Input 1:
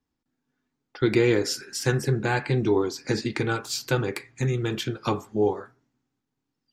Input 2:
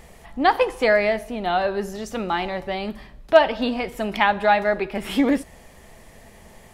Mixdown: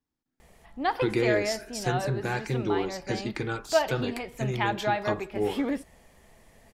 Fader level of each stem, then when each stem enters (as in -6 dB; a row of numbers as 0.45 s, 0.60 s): -5.5 dB, -9.5 dB; 0.00 s, 0.40 s